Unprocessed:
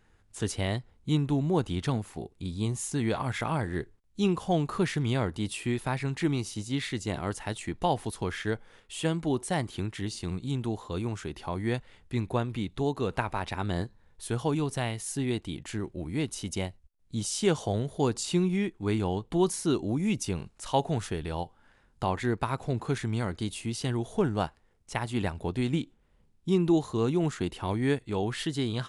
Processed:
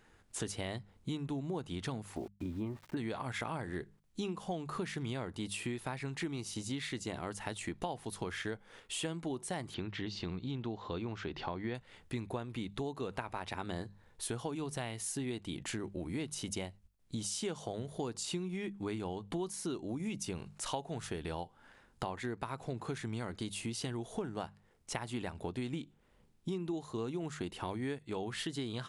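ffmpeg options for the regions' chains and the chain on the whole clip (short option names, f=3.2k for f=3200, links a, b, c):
-filter_complex "[0:a]asettb=1/sr,asplit=3[a][b][c];[a]atrim=end=2.164[d];[b]atrim=start=2.16:end=2.97,asetpts=PTS-STARTPTS,afade=t=in:d=0.004:c=qsin,afade=t=out:st=0.806:d=0.004:c=qsin,lowpass=f=2.1k:w=0.5412,lowpass=f=2.1k:w=1.3066,aecho=1:1:3.3:0.48,atrim=end_sample=35721,aeval=exprs='val(0)*gte(abs(val(0)),0.00266)':c=same[e];[c]atrim=start=2.966[f];[d][e]acrossfade=d=0.004:c1=hsin:c2=qsin[g];[g][f]acrossfade=d=0.004:c1=qsin:c2=hsin,asettb=1/sr,asplit=3[h][i][j];[h]atrim=end=9.744[k];[i]atrim=start=9.74:end=11.75,asetpts=PTS-STARTPTS,afade=t=in:d=0.004:c=qsin,afade=t=out:st=2.006:d=0.004:c=qsin,lowpass=f=4.8k:w=0.5412,lowpass=f=4.8k:w=1.3066,acompressor=mode=upward:threshold=-38dB:ratio=2.5:attack=3.2:release=140:knee=2.83:detection=peak[l];[j]atrim=start=11.746[m];[k][l]acrossfade=d=0.004:c1=hsin:c2=qsin[n];[n][m]acrossfade=d=0.004:c1=qsin:c2=hsin,lowshelf=f=100:g=-8.5,bandreject=f=50:t=h:w=6,bandreject=f=100:t=h:w=6,bandreject=f=150:t=h:w=6,bandreject=f=200:t=h:w=6,acompressor=threshold=-39dB:ratio=6,volume=3dB"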